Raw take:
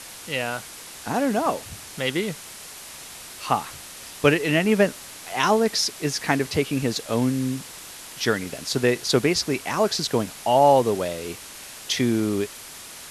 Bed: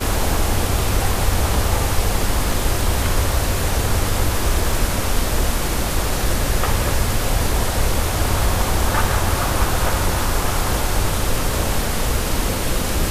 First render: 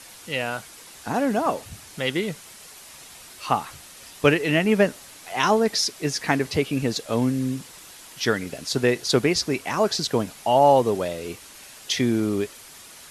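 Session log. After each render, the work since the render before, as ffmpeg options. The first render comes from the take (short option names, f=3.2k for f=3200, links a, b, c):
-af "afftdn=nr=6:nf=-41"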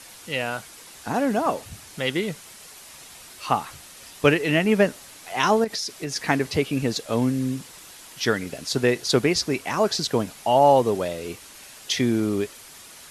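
-filter_complex "[0:a]asettb=1/sr,asplit=3[a][b][c];[a]atrim=end=5.644[d];[b]atrim=start=5.64:end=6.16,asetpts=PTS-STARTPTS,afade=t=in:d=0.004:c=qsin,afade=t=out:st=0.516:d=0.004:c=qsin,acompressor=threshold=-25dB:ratio=6:attack=3.2:release=140:knee=1:detection=peak[e];[c]atrim=start=6.156[f];[d][e]acrossfade=d=0.004:c1=hsin:c2=qsin[g];[g][f]acrossfade=d=0.004:c1=qsin:c2=hsin"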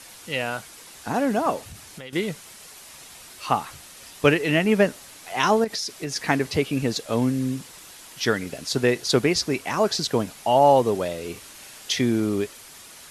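-filter_complex "[0:a]asettb=1/sr,asplit=3[a][b][c];[a]atrim=end=1.604[d];[b]atrim=start=1.6:end=2.13,asetpts=PTS-STARTPTS,afade=t=in:d=0.004:c=qsin,afade=t=out:st=0.526:d=0.004:c=qsin,acompressor=threshold=-35dB:ratio=8:attack=3.2:release=140:knee=1:detection=peak[e];[c]atrim=start=2.126[f];[d][e]acrossfade=d=0.004:c1=hsin:c2=qsin[g];[g][f]acrossfade=d=0.004:c1=qsin:c2=hsin,asettb=1/sr,asplit=3[h][i][j];[h]atrim=end=11.324[k];[i]atrim=start=11.32:end=11.94,asetpts=PTS-STARTPTS,afade=t=in:d=0.004:c=qsin,afade=t=out:st=0.616:d=0.004:c=qsin,asplit=2[l][m];[m]adelay=37,volume=-6dB[n];[l][n]amix=inputs=2:normalize=0,atrim=end_sample=27342[o];[j]atrim=start=11.936[p];[k][o]acrossfade=d=0.004:c1=hsin:c2=qsin[q];[q][p]acrossfade=d=0.004:c1=qsin:c2=hsin"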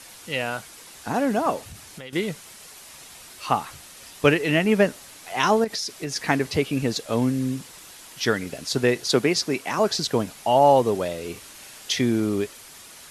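-filter_complex "[0:a]asettb=1/sr,asplit=3[a][b][c];[a]atrim=end=9.074[d];[b]atrim=start=9.07:end=9.79,asetpts=PTS-STARTPTS,afade=t=in:d=0.004:c=qsin,afade=t=out:st=0.716:d=0.004:c=qsin,highpass=140[e];[c]atrim=start=9.786[f];[d][e]acrossfade=d=0.004:c1=hsin:c2=qsin[g];[g][f]acrossfade=d=0.004:c1=qsin:c2=hsin"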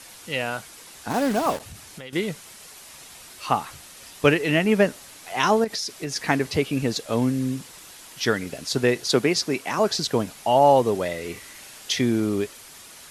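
-filter_complex "[0:a]asettb=1/sr,asplit=3[a][b][c];[a]atrim=end=1.104[d];[b]atrim=start=1.1:end=1.6,asetpts=PTS-STARTPTS,afade=t=in:d=0.004:c=qsin,afade=t=out:st=0.496:d=0.004:c=qsin,acrusher=bits=4:mix=0:aa=0.5[e];[c]atrim=start=1.596[f];[d][e]acrossfade=d=0.004:c1=hsin:c2=qsin[g];[g][f]acrossfade=d=0.004:c1=qsin:c2=hsin,asettb=1/sr,asplit=3[h][i][j];[h]atrim=end=11.034[k];[i]atrim=start=11.03:end=11.6,asetpts=PTS-STARTPTS,afade=t=in:d=0.004:c=qsin,afade=t=out:st=0.566:d=0.004:c=qsin,equalizer=f=2k:t=o:w=0.21:g=12[l];[j]atrim=start=11.596[m];[k][l]acrossfade=d=0.004:c1=hsin:c2=qsin[n];[n][m]acrossfade=d=0.004:c1=qsin:c2=hsin"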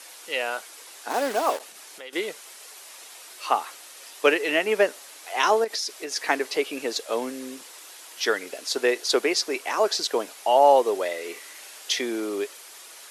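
-af "highpass=f=360:w=0.5412,highpass=f=360:w=1.3066"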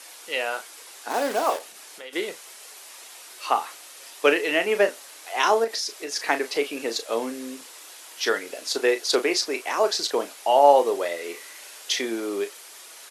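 -filter_complex "[0:a]asplit=2[a][b];[b]adelay=35,volume=-10dB[c];[a][c]amix=inputs=2:normalize=0"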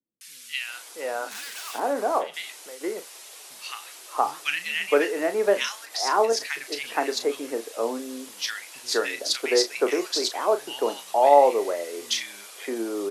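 -filter_complex "[0:a]acrossover=split=150|1700[a][b][c];[c]adelay=210[d];[b]adelay=680[e];[a][e][d]amix=inputs=3:normalize=0"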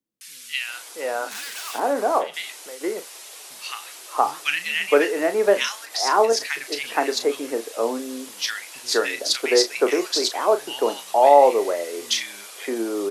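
-af "volume=3.5dB,alimiter=limit=-2dB:level=0:latency=1"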